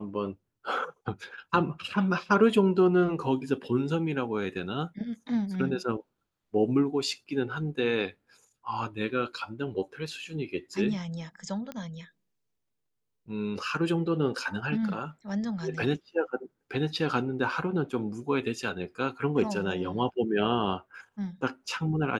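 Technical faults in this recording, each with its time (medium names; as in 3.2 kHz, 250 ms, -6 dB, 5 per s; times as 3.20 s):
11.72 s: pop -23 dBFS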